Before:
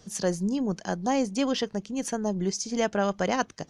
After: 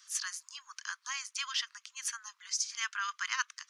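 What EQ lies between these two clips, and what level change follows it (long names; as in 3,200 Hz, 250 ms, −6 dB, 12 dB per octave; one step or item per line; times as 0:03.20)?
Butterworth high-pass 1,100 Hz 72 dB per octave
0.0 dB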